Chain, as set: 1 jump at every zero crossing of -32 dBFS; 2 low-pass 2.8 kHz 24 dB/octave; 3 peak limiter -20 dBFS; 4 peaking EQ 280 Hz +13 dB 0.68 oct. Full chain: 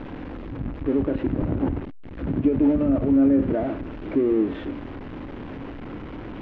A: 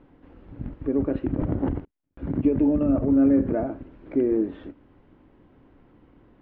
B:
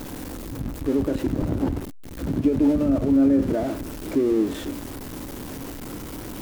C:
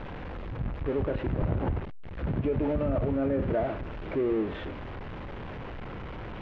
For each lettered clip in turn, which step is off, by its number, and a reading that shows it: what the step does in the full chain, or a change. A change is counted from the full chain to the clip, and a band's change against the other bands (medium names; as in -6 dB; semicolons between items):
1, distortion -12 dB; 2, momentary loudness spread change -2 LU; 4, 250 Hz band -10.0 dB